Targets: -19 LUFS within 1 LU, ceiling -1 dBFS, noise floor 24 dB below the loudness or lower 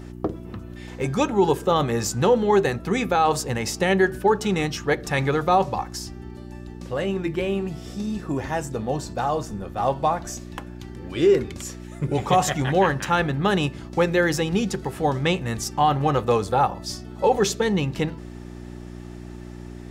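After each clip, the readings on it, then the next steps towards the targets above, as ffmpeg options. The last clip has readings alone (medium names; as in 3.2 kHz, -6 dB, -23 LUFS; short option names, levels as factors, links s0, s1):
hum 60 Hz; highest harmonic 360 Hz; hum level -35 dBFS; loudness -23.0 LUFS; peak level -7.5 dBFS; loudness target -19.0 LUFS
-> -af "bandreject=f=60:t=h:w=4,bandreject=f=120:t=h:w=4,bandreject=f=180:t=h:w=4,bandreject=f=240:t=h:w=4,bandreject=f=300:t=h:w=4,bandreject=f=360:t=h:w=4"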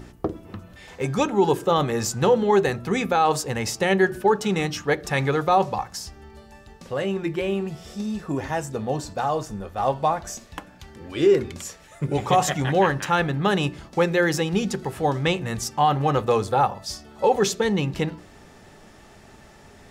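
hum not found; loudness -23.5 LUFS; peak level -8.0 dBFS; loudness target -19.0 LUFS
-> -af "volume=1.68"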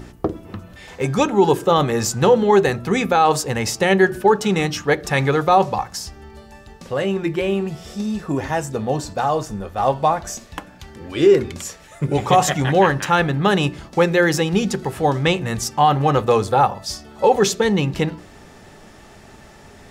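loudness -18.5 LUFS; peak level -3.0 dBFS; noise floor -45 dBFS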